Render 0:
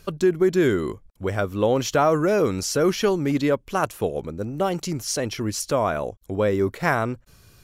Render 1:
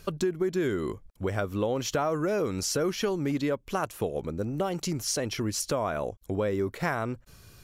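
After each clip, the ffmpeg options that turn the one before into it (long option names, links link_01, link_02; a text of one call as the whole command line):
ffmpeg -i in.wav -af "acompressor=threshold=-27dB:ratio=3" out.wav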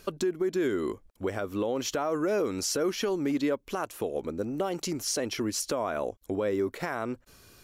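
ffmpeg -i in.wav -af "lowshelf=frequency=200:width_type=q:width=1.5:gain=-6.5,alimiter=limit=-19.5dB:level=0:latency=1:release=87" out.wav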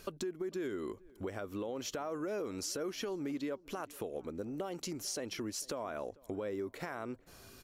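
ffmpeg -i in.wav -filter_complex "[0:a]acompressor=threshold=-42dB:ratio=2,asplit=2[link_01][link_02];[link_02]adelay=448,lowpass=frequency=1600:poles=1,volume=-23dB,asplit=2[link_03][link_04];[link_04]adelay=448,lowpass=frequency=1600:poles=1,volume=0.41,asplit=2[link_05][link_06];[link_06]adelay=448,lowpass=frequency=1600:poles=1,volume=0.41[link_07];[link_01][link_03][link_05][link_07]amix=inputs=4:normalize=0,volume=-1dB" out.wav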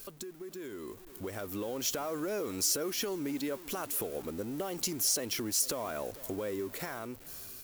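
ffmpeg -i in.wav -af "aeval=exprs='val(0)+0.5*0.00376*sgn(val(0))':channel_layout=same,aemphasis=mode=production:type=50fm,dynaudnorm=framelen=330:gausssize=7:maxgain=9dB,volume=-7dB" out.wav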